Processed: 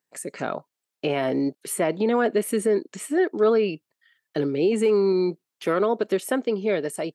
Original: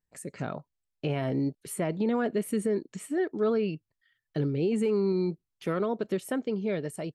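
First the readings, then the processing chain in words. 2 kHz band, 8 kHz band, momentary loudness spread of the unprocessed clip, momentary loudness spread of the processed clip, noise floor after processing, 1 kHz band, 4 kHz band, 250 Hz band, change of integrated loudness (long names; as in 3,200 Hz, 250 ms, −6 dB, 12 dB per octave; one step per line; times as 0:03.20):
+8.5 dB, +8.5 dB, 11 LU, 11 LU, below −85 dBFS, +8.5 dB, +8.5 dB, +3.5 dB, +6.0 dB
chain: high-pass filter 300 Hz 12 dB per octave
level +8.5 dB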